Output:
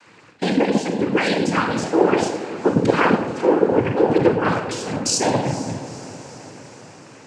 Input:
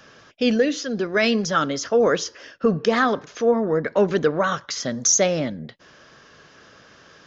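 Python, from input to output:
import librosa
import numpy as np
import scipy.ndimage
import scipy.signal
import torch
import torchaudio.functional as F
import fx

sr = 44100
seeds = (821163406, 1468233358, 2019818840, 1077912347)

p1 = fx.room_shoebox(x, sr, seeds[0], volume_m3=2700.0, walls='furnished', distance_m=3.8)
p2 = fx.noise_vocoder(p1, sr, seeds[1], bands=8)
p3 = fx.high_shelf(p2, sr, hz=4900.0, db=-7.0)
p4 = p3 + fx.echo_diffused(p3, sr, ms=464, feedback_pct=61, wet_db=-15.0, dry=0)
y = F.gain(torch.from_numpy(p4), -1.5).numpy()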